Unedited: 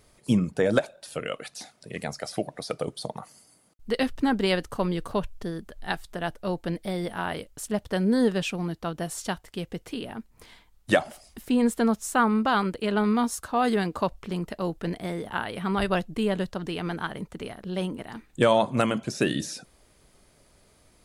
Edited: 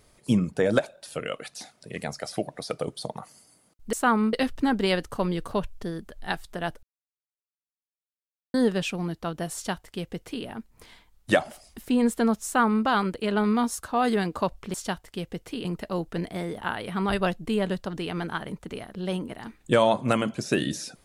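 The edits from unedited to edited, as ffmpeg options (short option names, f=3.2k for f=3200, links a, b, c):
-filter_complex "[0:a]asplit=7[a][b][c][d][e][f][g];[a]atrim=end=3.932[h];[b]atrim=start=12.048:end=12.452[i];[c]atrim=start=3.928:end=6.43,asetpts=PTS-STARTPTS,afade=t=out:st=2.498:d=0.004:c=hsin[j];[d]atrim=start=6.43:end=8.14,asetpts=PTS-STARTPTS,volume=0[k];[e]atrim=start=8.14:end=14.342,asetpts=PTS-STARTPTS,afade=t=in:d=0.004:c=hsin[l];[f]atrim=start=9.138:end=10.052[m];[g]atrim=start=14.338[n];[h][i]acrossfade=d=0.004:c1=hsin:c2=hsin[o];[j][k][l]concat=n=3:v=0:a=1[p];[o][p]acrossfade=d=0.004:c1=hsin:c2=hsin[q];[q][m]acrossfade=d=0.004:c1=hsin:c2=hsin[r];[r][n]acrossfade=d=0.004:c1=hsin:c2=hsin"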